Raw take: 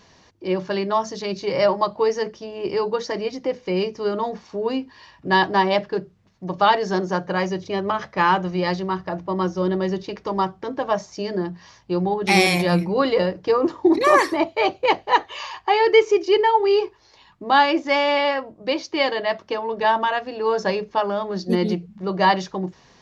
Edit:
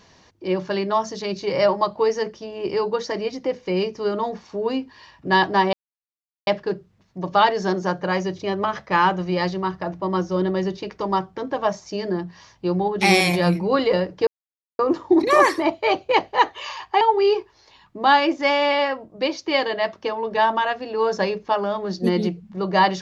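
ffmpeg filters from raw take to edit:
ffmpeg -i in.wav -filter_complex "[0:a]asplit=4[link_01][link_02][link_03][link_04];[link_01]atrim=end=5.73,asetpts=PTS-STARTPTS,afade=type=out:start_time=5.726:duration=0.004:curve=hsin,apad=pad_dur=0.74[link_05];[link_02]atrim=start=5.73:end=13.53,asetpts=PTS-STARTPTS,afade=type=in:duration=0.004:curve=hsin,afade=type=out:start_time=7.796:duration=0.004:curve=hsin,apad=pad_dur=0.52[link_06];[link_03]atrim=start=13.53:end=15.752,asetpts=PTS-STARTPTS,afade=type=in:duration=0.004:curve=hsin[link_07];[link_04]atrim=start=16.468[link_08];[link_05][link_06][link_07]concat=n=3:v=0:a=1[link_09];[link_09][link_08]acrossfade=duration=0.004:curve1=hsin:curve2=hsin" out.wav

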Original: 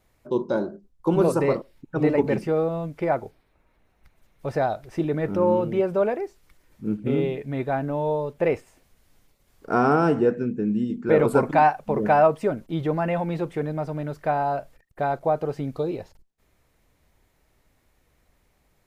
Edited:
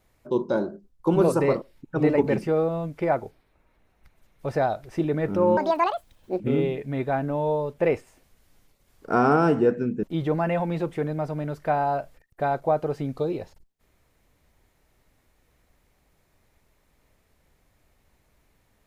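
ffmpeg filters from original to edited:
ffmpeg -i in.wav -filter_complex "[0:a]asplit=4[link_01][link_02][link_03][link_04];[link_01]atrim=end=5.574[link_05];[link_02]atrim=start=5.57:end=7,asetpts=PTS-STARTPTS,asetrate=75852,aresample=44100[link_06];[link_03]atrim=start=6.996:end=10.632[link_07];[link_04]atrim=start=12.618[link_08];[link_05][link_06]acrossfade=duration=0.004:curve1=hsin:curve2=hsin[link_09];[link_09][link_07]acrossfade=duration=0.004:curve1=hsin:curve2=hsin[link_10];[link_10][link_08]acrossfade=duration=0.004:curve1=hsin:curve2=hsin" out.wav

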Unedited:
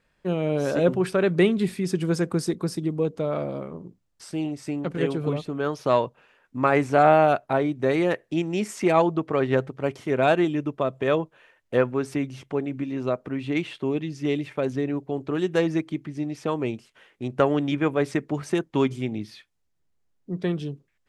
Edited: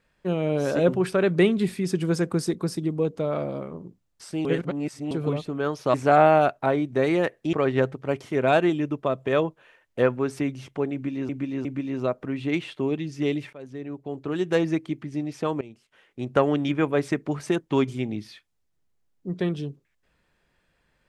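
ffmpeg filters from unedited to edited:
ffmpeg -i in.wav -filter_complex "[0:a]asplit=9[link_01][link_02][link_03][link_04][link_05][link_06][link_07][link_08][link_09];[link_01]atrim=end=4.452[link_10];[link_02]atrim=start=4.448:end=5.112,asetpts=PTS-STARTPTS,areverse[link_11];[link_03]atrim=start=5.108:end=5.942[link_12];[link_04]atrim=start=6.808:end=8.402[link_13];[link_05]atrim=start=9.278:end=13.042[link_14];[link_06]atrim=start=12.678:end=13.042[link_15];[link_07]atrim=start=12.678:end=14.56,asetpts=PTS-STARTPTS,afade=type=out:start_time=1.878:duration=0.004:curve=hsin:silence=0.105925[link_16];[link_08]atrim=start=14.56:end=16.64,asetpts=PTS-STARTPTS,afade=type=in:duration=1.03:silence=0.105925,afade=type=out:start_time=2.076:duration=0.004:curve=hsin:silence=0.112202[link_17];[link_09]atrim=start=16.64,asetpts=PTS-STARTPTS,afade=type=in:duration=0.7:silence=0.112202[link_18];[link_10][link_11]acrossfade=duration=0.004:curve1=hsin:curve2=hsin[link_19];[link_19][link_12]acrossfade=duration=0.004:curve1=hsin:curve2=hsin[link_20];[link_20][link_13]acrossfade=duration=0.004:curve1=hsin:curve2=hsin[link_21];[link_21][link_14]acrossfade=duration=0.004:curve1=hsin:curve2=hsin[link_22];[link_22][link_15]acrossfade=duration=0.004:curve1=hsin:curve2=hsin[link_23];[link_16][link_17][link_18]concat=n=3:v=0:a=1[link_24];[link_23][link_24]acrossfade=duration=0.004:curve1=hsin:curve2=hsin" out.wav

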